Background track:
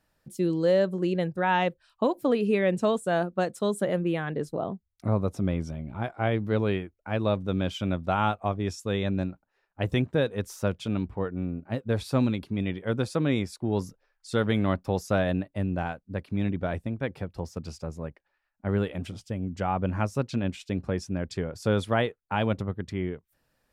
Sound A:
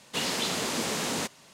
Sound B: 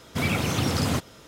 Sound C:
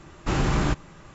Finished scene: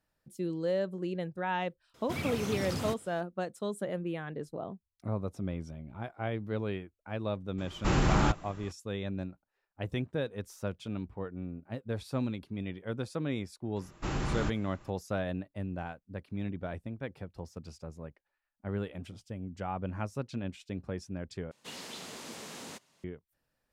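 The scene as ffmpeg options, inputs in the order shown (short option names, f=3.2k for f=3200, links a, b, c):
-filter_complex "[3:a]asplit=2[a][b];[0:a]volume=-8.5dB,asplit=2[c][d];[c]atrim=end=21.514[e];[1:a]atrim=end=1.53,asetpts=PTS-STARTPTS,volume=-14.5dB[f];[d]atrim=start=23.036[g];[2:a]atrim=end=1.27,asetpts=PTS-STARTPTS,volume=-11dB,afade=t=in:d=0.004:c=hsin,afade=t=out:st=1.266:d=0.004:c=hsin,adelay=1940[h];[a]atrim=end=1.14,asetpts=PTS-STARTPTS,volume=-3dB,afade=t=in:d=0.004:c=hsin,afade=t=out:st=1.136:d=0.004:c=hsin,adelay=7580[i];[b]atrim=end=1.14,asetpts=PTS-STARTPTS,volume=-9.5dB,afade=t=in:d=0.004:c=hsin,afade=t=out:st=1.136:d=0.004:c=hsin,adelay=13760[j];[e][f]acrossfade=d=0.004:c1=hsin:c2=hsin[k];[k][g]acrossfade=d=0.004:c1=hsin:c2=hsin[l];[l][h][i][j]amix=inputs=4:normalize=0"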